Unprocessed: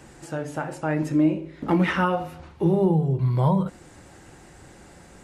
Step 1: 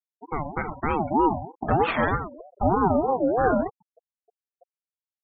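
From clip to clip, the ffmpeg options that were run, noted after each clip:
-filter_complex "[0:a]afftfilt=real='re*gte(hypot(re,im),0.0447)':imag='im*gte(hypot(re,im),0.0447)':win_size=1024:overlap=0.75,asplit=2[s0][s1];[s1]acompressor=threshold=0.0398:ratio=8,volume=0.794[s2];[s0][s2]amix=inputs=2:normalize=0,aeval=exprs='val(0)*sin(2*PI*540*n/s+540*0.25/3.2*sin(2*PI*3.2*n/s))':c=same"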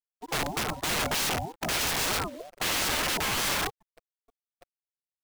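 -filter_complex "[0:a]acrossover=split=220|300|1000[s0][s1][s2][s3];[s1]acompressor=threshold=0.00794:ratio=6[s4];[s0][s4][s2][s3]amix=inputs=4:normalize=0,acrusher=bits=9:dc=4:mix=0:aa=0.000001,aeval=exprs='(mod(16.8*val(0)+1,2)-1)/16.8':c=same,volume=1.19"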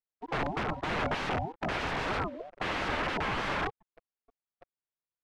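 -af "lowpass=2000"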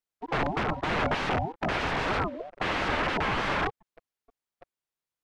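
-af "highshelf=f=9300:g=-5,volume=1.58"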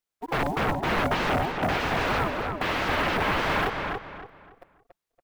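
-filter_complex "[0:a]asplit=2[s0][s1];[s1]asoftclip=type=tanh:threshold=0.0316,volume=0.355[s2];[s0][s2]amix=inputs=2:normalize=0,acrusher=bits=6:mode=log:mix=0:aa=0.000001,asplit=2[s3][s4];[s4]adelay=283,lowpass=f=3400:p=1,volume=0.631,asplit=2[s5][s6];[s6]adelay=283,lowpass=f=3400:p=1,volume=0.32,asplit=2[s7][s8];[s8]adelay=283,lowpass=f=3400:p=1,volume=0.32,asplit=2[s9][s10];[s10]adelay=283,lowpass=f=3400:p=1,volume=0.32[s11];[s3][s5][s7][s9][s11]amix=inputs=5:normalize=0"

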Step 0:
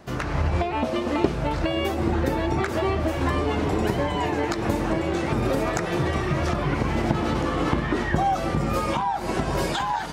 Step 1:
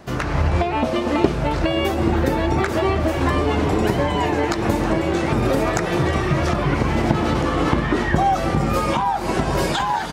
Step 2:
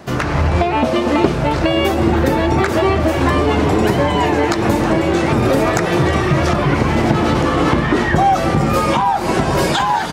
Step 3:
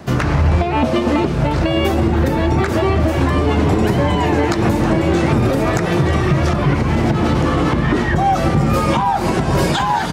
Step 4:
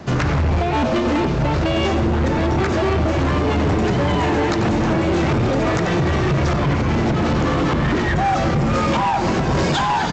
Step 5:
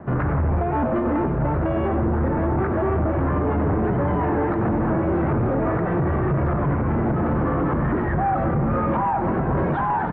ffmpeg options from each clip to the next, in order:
-af "aecho=1:1:317:0.141,volume=1.68"
-af "acontrast=72,highpass=66,volume=0.891"
-filter_complex "[0:a]acrossover=split=240[s0][s1];[s0]acontrast=54[s2];[s2][s1]amix=inputs=2:normalize=0,alimiter=limit=0.501:level=0:latency=1:release=240"
-filter_complex "[0:a]asplit=2[s0][s1];[s1]adelay=93.29,volume=0.282,highshelf=f=4000:g=-2.1[s2];[s0][s2]amix=inputs=2:normalize=0,aresample=16000,asoftclip=type=hard:threshold=0.178,aresample=44100"
-af "lowpass=f=1600:w=0.5412,lowpass=f=1600:w=1.3066,volume=0.708"

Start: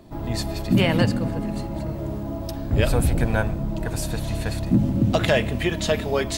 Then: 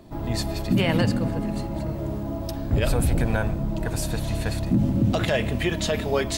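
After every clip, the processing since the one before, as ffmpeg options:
-af "alimiter=limit=0.251:level=0:latency=1:release=42"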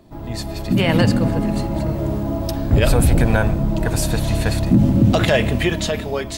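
-af "dynaudnorm=f=120:g=13:m=3.16,volume=0.841"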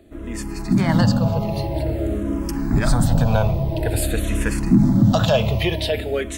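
-filter_complex "[0:a]asplit=2[s0][s1];[s1]asoftclip=type=hard:threshold=0.133,volume=0.251[s2];[s0][s2]amix=inputs=2:normalize=0,asplit=2[s3][s4];[s4]afreqshift=-0.49[s5];[s3][s5]amix=inputs=2:normalize=1"

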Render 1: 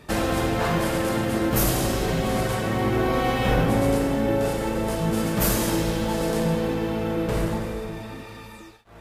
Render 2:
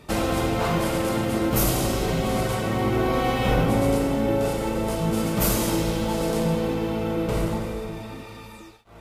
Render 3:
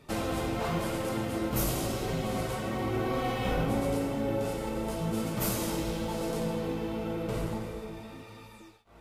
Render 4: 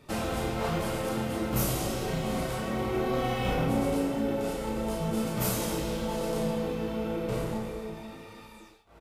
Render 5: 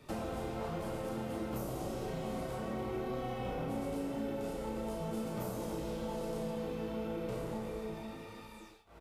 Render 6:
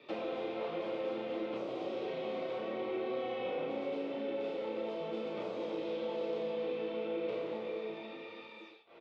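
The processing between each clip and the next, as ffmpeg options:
-af "bandreject=f=1700:w=6.9"
-af "flanger=delay=7:depth=8.2:regen=-42:speed=0.94:shape=triangular,volume=0.631"
-filter_complex "[0:a]asplit=2[s0][s1];[s1]adelay=32,volume=0.596[s2];[s0][s2]amix=inputs=2:normalize=0"
-filter_complex "[0:a]acrossover=split=240|1100[s0][s1][s2];[s0]acompressor=threshold=0.00794:ratio=4[s3];[s1]acompressor=threshold=0.0141:ratio=4[s4];[s2]acompressor=threshold=0.00251:ratio=4[s5];[s3][s4][s5]amix=inputs=3:normalize=0,volume=0.841"
-af "highpass=330,equalizer=f=340:t=q:w=4:g=5,equalizer=f=510:t=q:w=4:g=6,equalizer=f=850:t=q:w=4:g=-3,equalizer=f=1500:t=q:w=4:g=-4,equalizer=f=2400:t=q:w=4:g=7,equalizer=f=3500:t=q:w=4:g=6,lowpass=f=4100:w=0.5412,lowpass=f=4100:w=1.3066"

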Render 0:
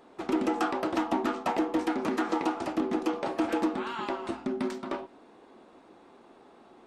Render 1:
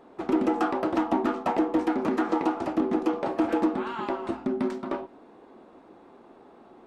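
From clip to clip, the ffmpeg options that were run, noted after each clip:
-af "highshelf=f=2100:g=-10,volume=1.58"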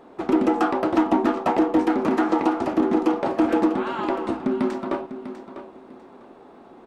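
-af "aecho=1:1:648|1296|1944:0.251|0.0578|0.0133,volume=1.68"

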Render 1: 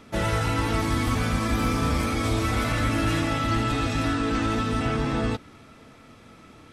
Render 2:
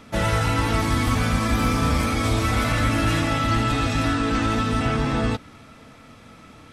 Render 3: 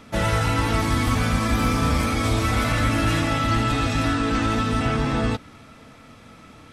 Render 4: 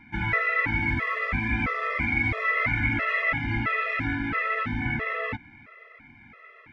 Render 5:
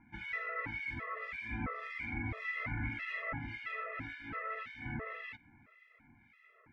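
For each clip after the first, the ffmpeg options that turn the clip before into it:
-af "equalizer=f=370:w=3.7:g=-6,volume=1.5"
-af anull
-af "lowpass=f=2100:t=q:w=9,afftfilt=real='re*gt(sin(2*PI*1.5*pts/sr)*(1-2*mod(floor(b*sr/1024/350),2)),0)':imag='im*gt(sin(2*PI*1.5*pts/sr)*(1-2*mod(floor(b*sr/1024/350),2)),0)':win_size=1024:overlap=0.75,volume=0.501"
-filter_complex "[0:a]acrossover=split=1800[s0][s1];[s0]aeval=exprs='val(0)*(1-1/2+1/2*cos(2*PI*1.8*n/s))':c=same[s2];[s1]aeval=exprs='val(0)*(1-1/2-1/2*cos(2*PI*1.8*n/s))':c=same[s3];[s2][s3]amix=inputs=2:normalize=0,volume=0.376"

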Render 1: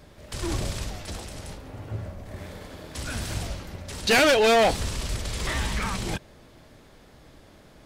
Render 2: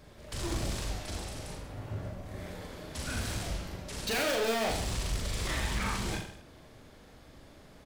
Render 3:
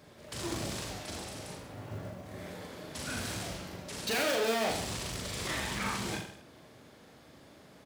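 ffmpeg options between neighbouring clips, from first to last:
-filter_complex "[0:a]volume=21.1,asoftclip=hard,volume=0.0473,asplit=2[s0][s1];[s1]aecho=0:1:40|84|132.4|185.6|244.2:0.631|0.398|0.251|0.158|0.1[s2];[s0][s2]amix=inputs=2:normalize=0,volume=0.596"
-af "acrusher=bits=8:mode=log:mix=0:aa=0.000001,highpass=120"

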